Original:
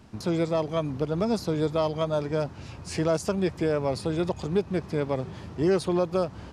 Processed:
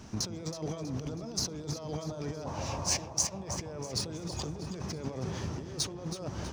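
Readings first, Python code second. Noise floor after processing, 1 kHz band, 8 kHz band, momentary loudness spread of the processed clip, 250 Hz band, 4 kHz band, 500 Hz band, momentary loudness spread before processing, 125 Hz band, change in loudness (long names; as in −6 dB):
−43 dBFS, −8.5 dB, +10.5 dB, 7 LU, −11.0 dB, +3.0 dB, −15.0 dB, 5 LU, −6.0 dB, −7.5 dB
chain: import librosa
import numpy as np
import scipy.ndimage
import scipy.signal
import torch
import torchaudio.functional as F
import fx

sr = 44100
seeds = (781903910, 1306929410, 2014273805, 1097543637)

p1 = scipy.ndimage.median_filter(x, 3, mode='constant')
p2 = fx.spec_box(p1, sr, start_s=2.46, length_s=1.1, low_hz=510.0, high_hz=1200.0, gain_db=10)
p3 = fx.over_compress(p2, sr, threshold_db=-35.0, ratio=-1.0)
p4 = fx.peak_eq(p3, sr, hz=6000.0, db=14.0, octaves=0.39)
p5 = p4 + fx.echo_alternate(p4, sr, ms=161, hz=900.0, feedback_pct=67, wet_db=-8.0, dry=0)
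y = p5 * librosa.db_to_amplitude(-4.5)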